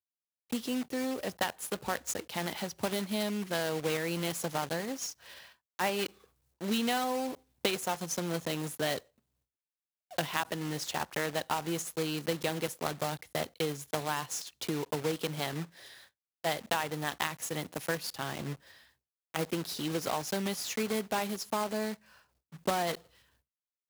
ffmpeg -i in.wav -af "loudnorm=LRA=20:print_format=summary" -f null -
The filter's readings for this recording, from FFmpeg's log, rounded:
Input Integrated:    -34.1 LUFS
Input True Peak:     -11.2 dBTP
Input LRA:             2.5 LU
Input Threshold:     -44.7 LUFS